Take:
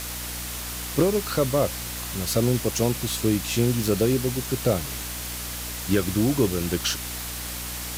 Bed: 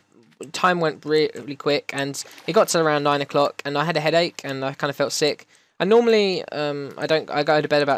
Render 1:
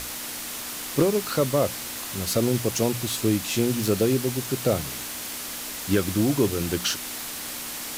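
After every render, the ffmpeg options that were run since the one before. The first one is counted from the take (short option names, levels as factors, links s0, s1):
-af "bandreject=f=60:t=h:w=6,bandreject=f=120:t=h:w=6,bandreject=f=180:t=h:w=6"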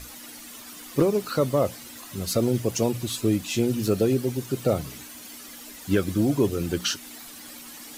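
-af "afftdn=nr=12:nf=-34"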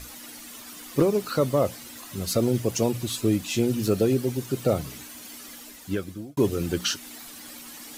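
-filter_complex "[0:a]asplit=2[s0][s1];[s0]atrim=end=6.37,asetpts=PTS-STARTPTS,afade=t=out:st=5.52:d=0.85[s2];[s1]atrim=start=6.37,asetpts=PTS-STARTPTS,afade=t=in:d=0.004:c=hsin[s3];[s2][s3]concat=n=2:v=0:a=1"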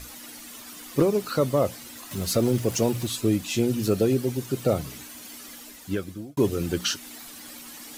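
-filter_complex "[0:a]asettb=1/sr,asplit=3[s0][s1][s2];[s0]atrim=end=2.114[s3];[s1]atrim=start=2.11:end=3.07,asetpts=PTS-STARTPTS,afade=t=in:d=0.004:c=qsin,afade=t=out:st=0.956:d=0.004:c=qsin,aeval=exprs='val(0)+0.5*0.015*sgn(val(0))':c=same[s4];[s2]atrim=start=3.066[s5];[s3][s4]acrossfade=d=0.004:c1=hsin:c2=qsin[s6];[s6][s5]acrossfade=d=0.004:c1=qsin:c2=hsin"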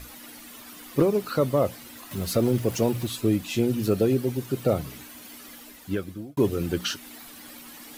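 -af "equalizer=f=6800:w=0.88:g=-6"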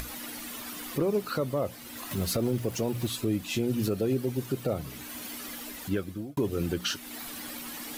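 -af "acompressor=mode=upward:threshold=0.0251:ratio=2.5,alimiter=limit=0.126:level=0:latency=1:release=222"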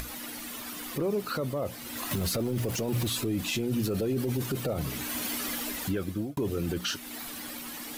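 -af "dynaudnorm=f=230:g=17:m=2.24,alimiter=limit=0.0841:level=0:latency=1:release=17"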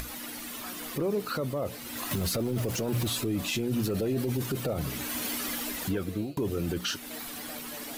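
-filter_complex "[1:a]volume=0.0316[s0];[0:a][s0]amix=inputs=2:normalize=0"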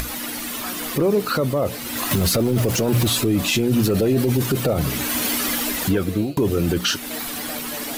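-af "volume=3.35"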